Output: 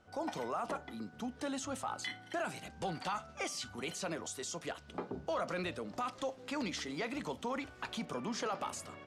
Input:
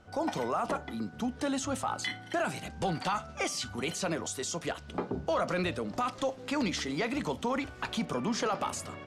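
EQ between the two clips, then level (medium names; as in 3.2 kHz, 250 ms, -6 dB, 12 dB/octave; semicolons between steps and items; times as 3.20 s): bass shelf 170 Hz -5.5 dB; -6.0 dB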